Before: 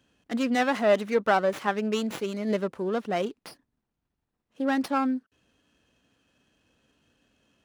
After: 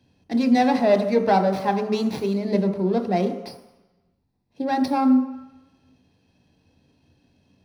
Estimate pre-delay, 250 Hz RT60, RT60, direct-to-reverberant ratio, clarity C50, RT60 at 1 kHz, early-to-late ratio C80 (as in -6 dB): 19 ms, 0.80 s, 1.0 s, 6.0 dB, 9.0 dB, 1.1 s, 11.0 dB